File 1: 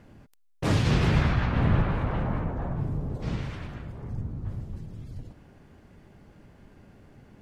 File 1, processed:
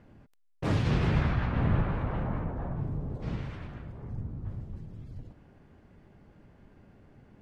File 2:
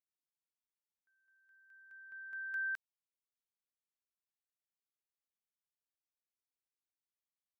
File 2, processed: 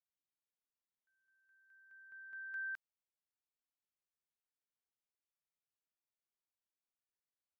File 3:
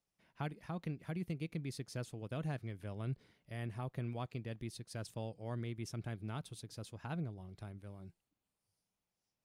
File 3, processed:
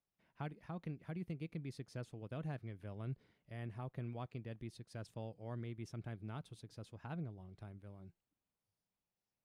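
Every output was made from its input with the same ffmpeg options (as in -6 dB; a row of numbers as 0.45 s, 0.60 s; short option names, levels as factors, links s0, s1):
-af "highshelf=f=4400:g=-10,volume=0.668"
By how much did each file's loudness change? -3.5 LU, -4.5 LU, -3.5 LU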